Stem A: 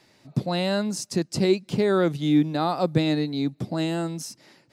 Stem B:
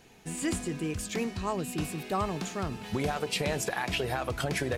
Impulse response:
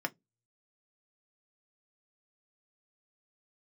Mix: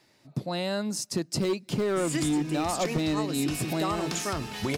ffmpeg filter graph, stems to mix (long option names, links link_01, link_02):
-filter_complex "[0:a]dynaudnorm=framelen=250:gausssize=9:maxgain=8dB,volume=11dB,asoftclip=hard,volume=-11dB,volume=-5.5dB,asplit=2[link_01][link_02];[link_02]volume=-20.5dB[link_03];[1:a]equalizer=frequency=5000:width=0.79:gain=6,adelay=1700,volume=1dB,asplit=2[link_04][link_05];[link_05]volume=-9.5dB[link_06];[2:a]atrim=start_sample=2205[link_07];[link_03][link_06]amix=inputs=2:normalize=0[link_08];[link_08][link_07]afir=irnorm=-1:irlink=0[link_09];[link_01][link_04][link_09]amix=inputs=3:normalize=0,highshelf=frequency=9600:gain=6,acompressor=threshold=-24dB:ratio=6"